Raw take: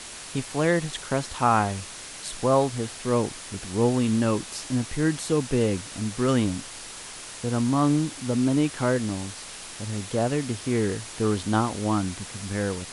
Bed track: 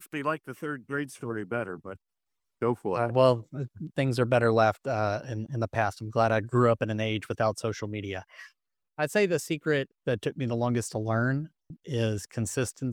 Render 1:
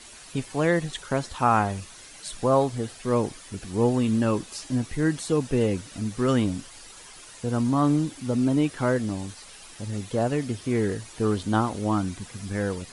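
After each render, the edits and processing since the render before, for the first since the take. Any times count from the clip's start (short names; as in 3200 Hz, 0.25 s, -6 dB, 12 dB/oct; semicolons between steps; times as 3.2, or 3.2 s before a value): denoiser 10 dB, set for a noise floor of -40 dBFS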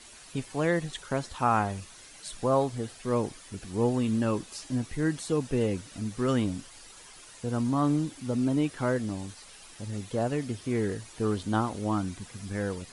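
gain -4 dB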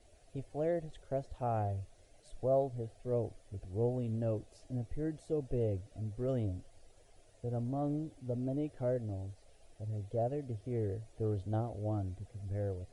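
EQ curve 100 Hz 0 dB, 190 Hz -15 dB, 670 Hz -2 dB, 990 Hz -24 dB, 2000 Hz -20 dB, 4200 Hz -22 dB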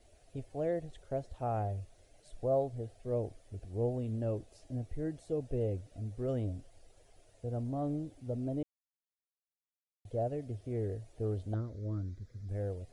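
8.63–10.05 mute; 11.54–12.49 fixed phaser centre 2800 Hz, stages 6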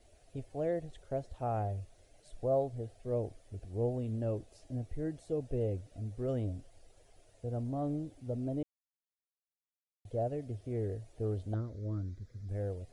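nothing audible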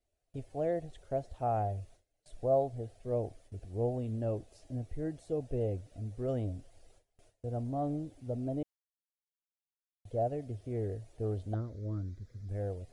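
gate with hold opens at -49 dBFS; dynamic EQ 720 Hz, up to +5 dB, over -49 dBFS, Q 3.3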